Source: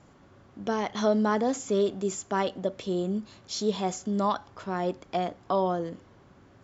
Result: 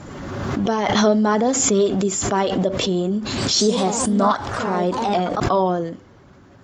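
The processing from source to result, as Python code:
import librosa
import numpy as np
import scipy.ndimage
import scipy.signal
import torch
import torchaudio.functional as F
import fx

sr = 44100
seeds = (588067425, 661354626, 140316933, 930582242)

y = fx.spec_quant(x, sr, step_db=15)
y = fx.echo_pitch(y, sr, ms=114, semitones=2, count=3, db_per_echo=-6.0, at=(3.22, 5.54))
y = fx.pre_swell(y, sr, db_per_s=29.0)
y = y * librosa.db_to_amplitude(7.5)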